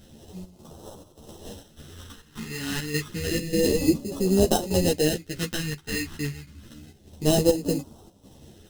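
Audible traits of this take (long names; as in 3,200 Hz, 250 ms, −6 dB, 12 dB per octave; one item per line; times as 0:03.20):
aliases and images of a low sample rate 2,300 Hz, jitter 0%
phaser sweep stages 2, 0.29 Hz, lowest notch 570–1,800 Hz
chopped level 1.7 Hz, depth 65%, duty 75%
a shimmering, thickened sound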